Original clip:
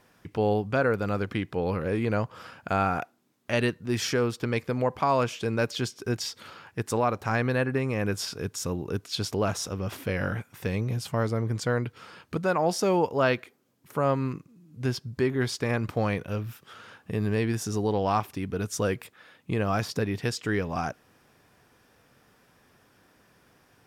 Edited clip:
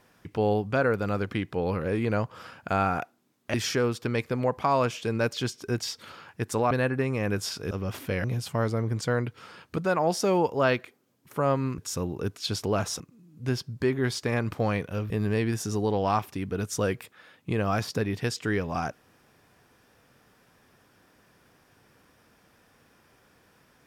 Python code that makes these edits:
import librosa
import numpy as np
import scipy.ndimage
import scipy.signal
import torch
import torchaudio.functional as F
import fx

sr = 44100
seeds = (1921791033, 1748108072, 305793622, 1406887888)

y = fx.edit(x, sr, fx.cut(start_s=3.54, length_s=0.38),
    fx.cut(start_s=7.09, length_s=0.38),
    fx.move(start_s=8.47, length_s=1.22, to_s=14.37),
    fx.cut(start_s=10.22, length_s=0.61),
    fx.cut(start_s=16.47, length_s=0.64), tone=tone)